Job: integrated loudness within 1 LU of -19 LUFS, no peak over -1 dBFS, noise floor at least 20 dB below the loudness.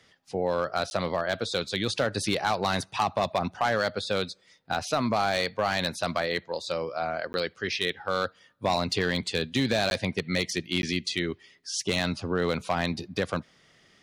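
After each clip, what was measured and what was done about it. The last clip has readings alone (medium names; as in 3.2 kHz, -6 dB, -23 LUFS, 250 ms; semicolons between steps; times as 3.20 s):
clipped samples 0.4%; clipping level -17.0 dBFS; dropouts 4; longest dropout 11 ms; loudness -28.5 LUFS; peak level -17.0 dBFS; loudness target -19.0 LUFS
-> clip repair -17 dBFS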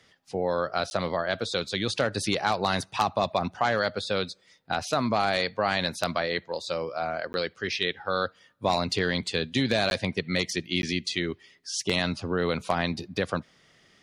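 clipped samples 0.0%; dropouts 4; longest dropout 11 ms
-> interpolate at 0.90/7.33/9.90/10.82 s, 11 ms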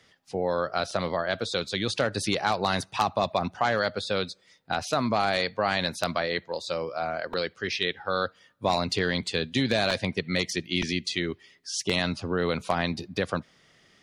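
dropouts 0; loudness -28.0 LUFS; peak level -8.0 dBFS; loudness target -19.0 LUFS
-> trim +9 dB; peak limiter -1 dBFS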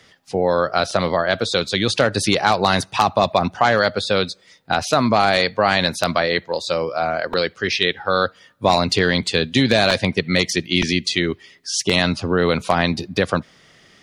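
loudness -19.0 LUFS; peak level -1.0 dBFS; noise floor -53 dBFS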